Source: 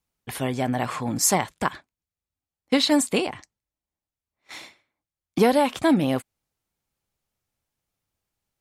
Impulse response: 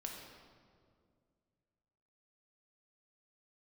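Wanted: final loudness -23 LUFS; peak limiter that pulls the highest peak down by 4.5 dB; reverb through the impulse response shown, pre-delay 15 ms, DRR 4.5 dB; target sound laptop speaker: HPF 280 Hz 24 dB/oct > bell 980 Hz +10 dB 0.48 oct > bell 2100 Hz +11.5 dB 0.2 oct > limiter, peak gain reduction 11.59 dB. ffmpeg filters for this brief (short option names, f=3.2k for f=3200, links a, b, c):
-filter_complex "[0:a]alimiter=limit=-12dB:level=0:latency=1,asplit=2[a][b];[1:a]atrim=start_sample=2205,adelay=15[c];[b][c]afir=irnorm=-1:irlink=0,volume=-3dB[d];[a][d]amix=inputs=2:normalize=0,highpass=f=280:w=0.5412,highpass=f=280:w=1.3066,equalizer=f=980:t=o:w=0.48:g=10,equalizer=f=2.1k:t=o:w=0.2:g=11.5,volume=5dB,alimiter=limit=-12dB:level=0:latency=1"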